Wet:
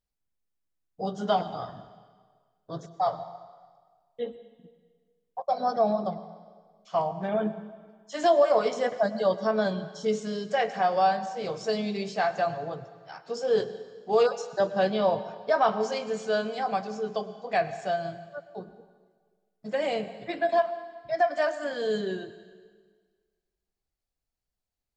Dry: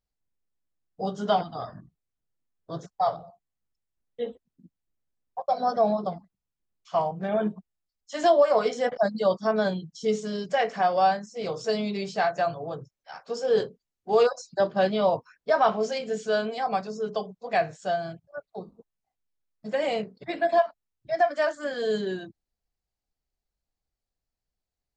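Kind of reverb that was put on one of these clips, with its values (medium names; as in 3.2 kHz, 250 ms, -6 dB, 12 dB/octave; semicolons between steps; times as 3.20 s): plate-style reverb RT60 1.6 s, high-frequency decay 0.95×, pre-delay 90 ms, DRR 13 dB; trim -1.5 dB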